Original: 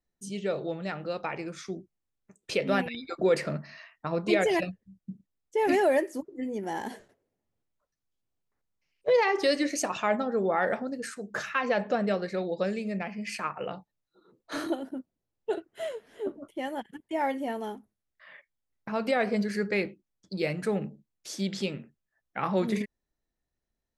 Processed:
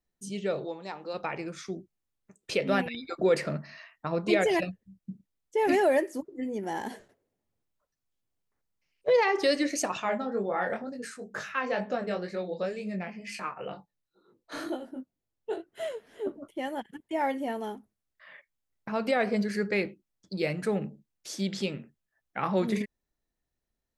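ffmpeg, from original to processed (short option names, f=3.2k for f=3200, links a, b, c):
-filter_complex "[0:a]asplit=3[a][b][c];[a]afade=t=out:st=0.64:d=0.02[d];[b]highpass=350,equalizer=f=620:t=q:w=4:g=-8,equalizer=f=940:t=q:w=4:g=8,equalizer=f=1.4k:t=q:w=4:g=-9,equalizer=f=1.9k:t=q:w=4:g=-6,equalizer=f=2.9k:t=q:w=4:g=-8,equalizer=f=6.1k:t=q:w=4:g=5,lowpass=f=8.6k:w=0.5412,lowpass=f=8.6k:w=1.3066,afade=t=in:st=0.64:d=0.02,afade=t=out:st=1.13:d=0.02[e];[c]afade=t=in:st=1.13:d=0.02[f];[d][e][f]amix=inputs=3:normalize=0,asplit=3[g][h][i];[g]afade=t=out:st=9.99:d=0.02[j];[h]flanger=delay=19.5:depth=3.9:speed=2.1,afade=t=in:st=9.99:d=0.02,afade=t=out:st=15.71:d=0.02[k];[i]afade=t=in:st=15.71:d=0.02[l];[j][k][l]amix=inputs=3:normalize=0"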